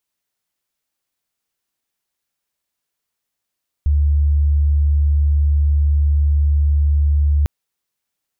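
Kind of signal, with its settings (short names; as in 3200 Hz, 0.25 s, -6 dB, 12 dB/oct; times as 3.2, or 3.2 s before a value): tone sine 73 Hz -11.5 dBFS 3.60 s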